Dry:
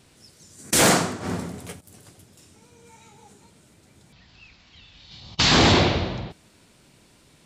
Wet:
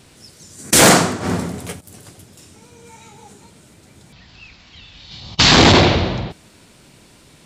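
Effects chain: transformer saturation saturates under 170 Hz; trim +8 dB

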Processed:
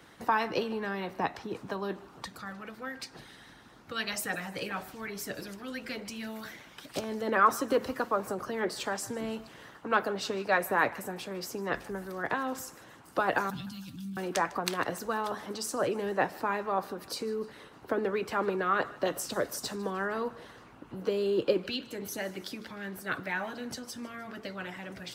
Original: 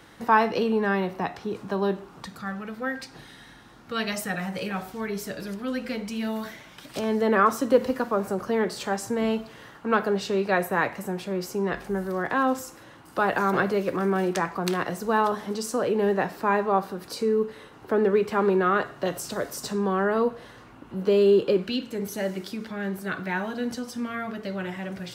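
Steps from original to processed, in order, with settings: high-pass 53 Hz; harmonic-percussive split harmonic -11 dB; 13.50–14.17 s: elliptic band-stop 210–3200 Hz, stop band 40 dB; thinning echo 153 ms, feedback 54%, high-pass 610 Hz, level -20.5 dB

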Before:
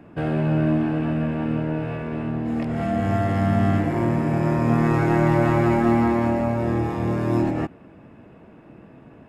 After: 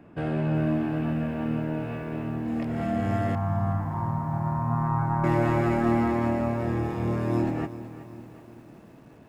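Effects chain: 3.35–5.24 s: FFT filter 150 Hz 0 dB, 440 Hz -20 dB, 950 Hz +7 dB, 2.8 kHz -24 dB; bit-crushed delay 376 ms, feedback 55%, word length 8-bit, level -14.5 dB; trim -4.5 dB

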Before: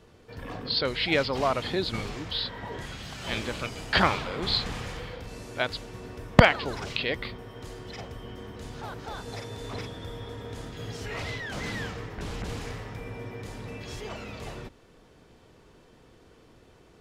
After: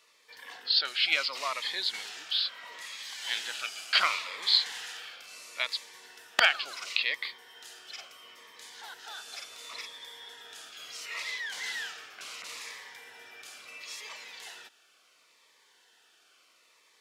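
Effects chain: high-pass 1.5 kHz 12 dB/octave; Shepard-style phaser falling 0.72 Hz; trim +4 dB

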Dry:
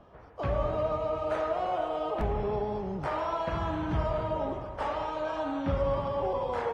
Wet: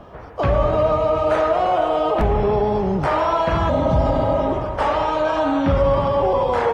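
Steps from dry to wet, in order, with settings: spectral replace 3.72–4.41 s, 240–3300 Hz after; in parallel at +1 dB: peak limiter -26.5 dBFS, peak gain reduction 9 dB; on the sum: trim +7.5 dB

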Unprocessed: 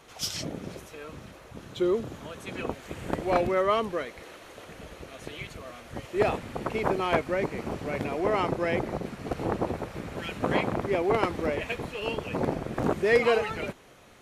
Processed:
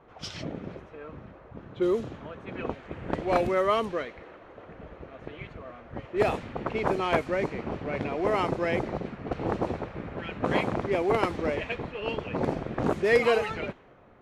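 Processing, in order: level-controlled noise filter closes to 1.2 kHz, open at -20.5 dBFS

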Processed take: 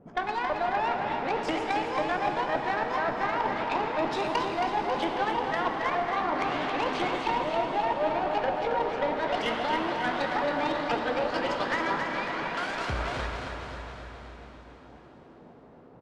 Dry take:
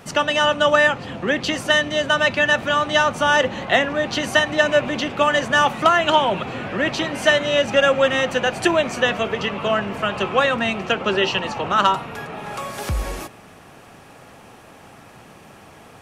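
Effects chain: sawtooth pitch modulation +10 st, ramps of 496 ms; low-pass that closes with the level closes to 870 Hz, closed at -16 dBFS; tone controls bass -5 dB, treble 0 dB; hum notches 50/100 Hz; reverse; compression 8:1, threshold -25 dBFS, peak gain reduction 10 dB; reverse; Chebyshev shaper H 3 -12 dB, 5 -29 dB, 8 -31 dB, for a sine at -14 dBFS; level-controlled noise filter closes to 330 Hz, open at -32.5 dBFS; on a send: feedback delay 272 ms, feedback 53%, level -6 dB; on the sum: plate-style reverb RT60 4.5 s, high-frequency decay 0.95×, DRR 4 dB; trim +5 dB

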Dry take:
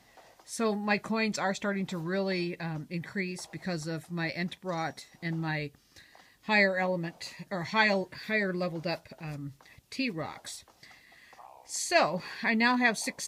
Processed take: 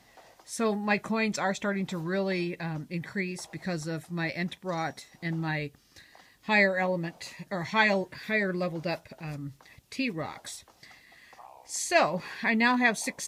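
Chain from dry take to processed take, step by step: dynamic bell 4.5 kHz, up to -6 dB, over -55 dBFS, Q 7.9; trim +1.5 dB

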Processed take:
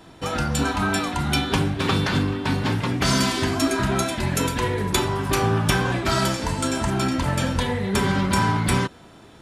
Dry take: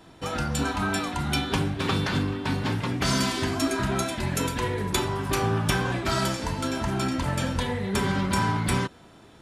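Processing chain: 6.49–6.90 s: peaking EQ 8.1 kHz +10 dB 0.41 oct; trim +4 dB

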